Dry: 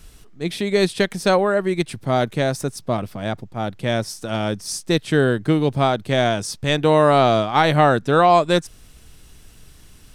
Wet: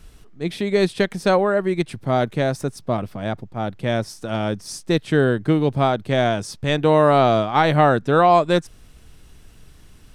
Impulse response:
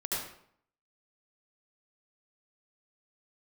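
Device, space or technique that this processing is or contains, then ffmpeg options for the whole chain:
behind a face mask: -af "highshelf=f=3.4k:g=-7"

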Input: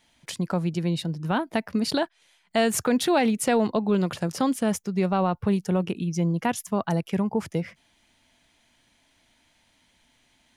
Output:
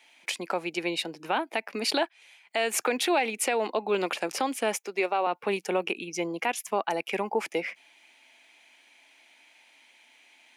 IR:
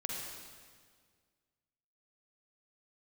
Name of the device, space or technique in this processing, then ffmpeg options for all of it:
laptop speaker: -filter_complex "[0:a]highpass=f=320:w=0.5412,highpass=f=320:w=1.3066,equalizer=f=810:t=o:w=0.26:g=5.5,equalizer=f=2.4k:t=o:w=0.53:g=12,alimiter=limit=-17dB:level=0:latency=1:release=276,asettb=1/sr,asplit=3[a][b][c];[a]atrim=end=4.754[d];[b]atrim=start=4.75:end=5.27,asetpts=PTS-STARTPTS,afade=t=in:d=0.004:c=qsin,afade=t=out:st=0.516:d=0.004:c=qsin,highpass=f=250:w=0.5412,highpass=f=250:w=1.3066[e];[c]atrim=start=5.266[f];[d][e]acrossfade=d=0.004:c1=hsin:c2=qsin[g];[g][f]acrossfade=d=0.004:c1=qsin:c2=hsin,volume=1.5dB"

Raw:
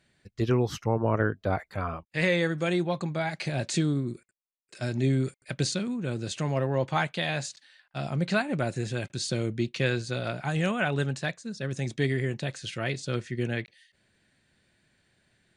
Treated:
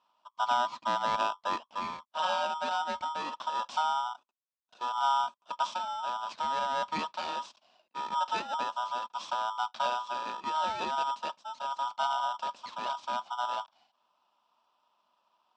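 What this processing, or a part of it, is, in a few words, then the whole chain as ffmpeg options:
ring modulator pedal into a guitar cabinet: -af "aeval=exprs='val(0)*sgn(sin(2*PI*1100*n/s))':c=same,highpass=110,equalizer=f=140:t=q:w=4:g=-6,equalizer=f=280:t=q:w=4:g=-10,equalizer=f=410:t=q:w=4:g=-5,equalizer=f=600:t=q:w=4:g=9,equalizer=f=1k:t=q:w=4:g=6,equalizer=f=2.4k:t=q:w=4:g=5,lowpass=f=4.3k:w=0.5412,lowpass=f=4.3k:w=1.3066,equalizer=f=125:t=o:w=1:g=-6,equalizer=f=250:t=o:w=1:g=12,equalizer=f=500:t=o:w=1:g=-9,equalizer=f=1k:t=o:w=1:g=6,equalizer=f=2k:t=o:w=1:g=-11,equalizer=f=8k:t=o:w=1:g=8,volume=-7dB"

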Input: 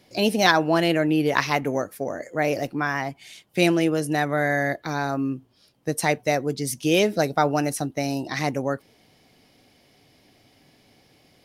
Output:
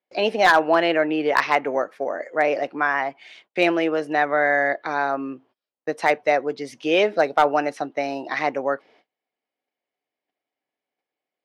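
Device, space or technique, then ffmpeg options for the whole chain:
walkie-talkie: -af "highpass=480,lowpass=2.4k,asoftclip=type=hard:threshold=-13dB,agate=range=-30dB:threshold=-58dB:ratio=16:detection=peak,volume=5.5dB"

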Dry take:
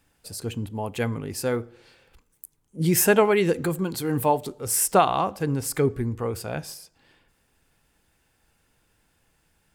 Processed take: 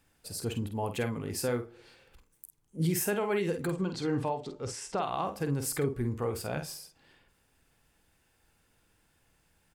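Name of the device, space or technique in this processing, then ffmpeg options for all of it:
stacked limiters: -filter_complex "[0:a]alimiter=limit=-11.5dB:level=0:latency=1:release=475,alimiter=limit=-18.5dB:level=0:latency=1:release=269,asettb=1/sr,asplit=3[a][b][c];[a]atrim=end=3.674[d];[b]atrim=start=3.67:end=5.03,asetpts=PTS-STARTPTS,afade=t=in:d=0.004:c=qsin,afade=t=out:st=1.356:d=0.004:c=qsin,lowpass=f=6.4k:w=0.5412,lowpass=f=6.4k:w=1.3066[e];[c]atrim=start=5.026[f];[d][e]acrossfade=d=0.004:c1=hsin:c2=qsin[g];[g][f]acrossfade=d=0.004:c1=qsin:c2=hsin,asplit=2[h][i];[i]adelay=49,volume=-8dB[j];[h][j]amix=inputs=2:normalize=0,volume=-3dB"

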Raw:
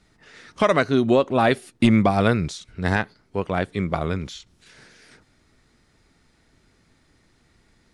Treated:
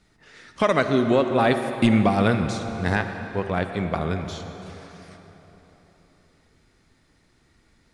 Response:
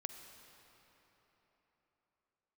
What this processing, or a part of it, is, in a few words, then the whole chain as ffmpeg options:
cathedral: -filter_complex "[1:a]atrim=start_sample=2205[a];[0:a][a]afir=irnorm=-1:irlink=0,volume=1.5dB"

